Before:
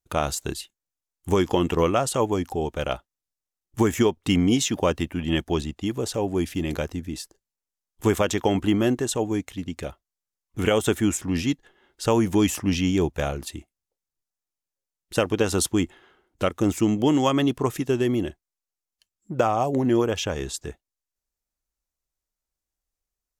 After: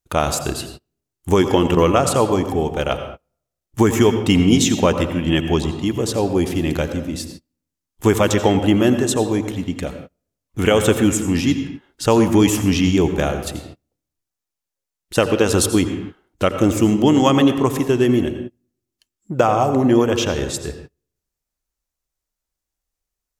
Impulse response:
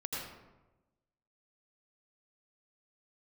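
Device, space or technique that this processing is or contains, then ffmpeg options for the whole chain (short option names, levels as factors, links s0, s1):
keyed gated reverb: -filter_complex "[0:a]asplit=3[s0][s1][s2];[1:a]atrim=start_sample=2205[s3];[s1][s3]afir=irnorm=-1:irlink=0[s4];[s2]apad=whole_len=1031678[s5];[s4][s5]sidechaingate=range=0.0224:threshold=0.00251:ratio=16:detection=peak,volume=0.447[s6];[s0][s6]amix=inputs=2:normalize=0,volume=1.5"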